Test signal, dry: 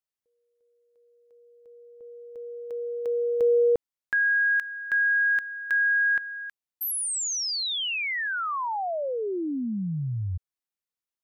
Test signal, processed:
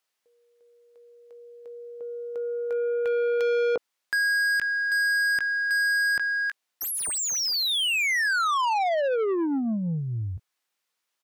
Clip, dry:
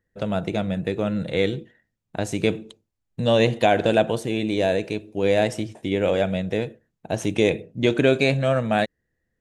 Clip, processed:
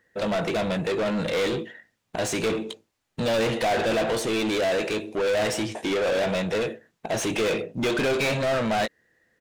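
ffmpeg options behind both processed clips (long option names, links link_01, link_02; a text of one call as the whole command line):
ffmpeg -i in.wav -filter_complex "[0:a]asoftclip=type=tanh:threshold=-11dB,asplit=2[link_01][link_02];[link_02]adelay=18,volume=-13dB[link_03];[link_01][link_03]amix=inputs=2:normalize=0,asplit=2[link_04][link_05];[link_05]highpass=frequency=720:poles=1,volume=30dB,asoftclip=type=tanh:threshold=-9.5dB[link_06];[link_04][link_06]amix=inputs=2:normalize=0,lowpass=frequency=5100:poles=1,volume=-6dB,volume=-8dB" out.wav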